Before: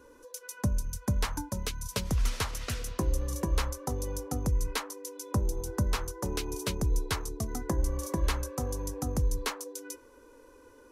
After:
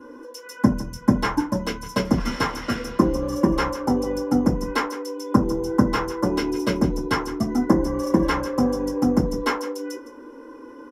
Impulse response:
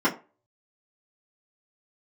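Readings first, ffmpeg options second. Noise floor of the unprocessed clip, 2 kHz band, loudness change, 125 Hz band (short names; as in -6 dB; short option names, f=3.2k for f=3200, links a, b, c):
-56 dBFS, +10.5 dB, +10.0 dB, +4.0 dB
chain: -filter_complex "[0:a]aecho=1:1:160:0.168[a];[1:a]atrim=start_sample=2205,atrim=end_sample=4410[b];[a][b]afir=irnorm=-1:irlink=0,volume=-4dB"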